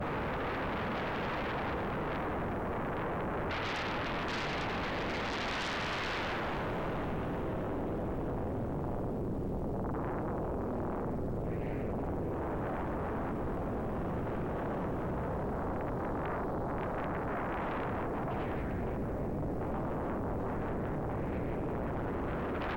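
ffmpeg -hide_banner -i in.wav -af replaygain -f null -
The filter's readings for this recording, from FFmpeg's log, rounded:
track_gain = +19.4 dB
track_peak = 0.018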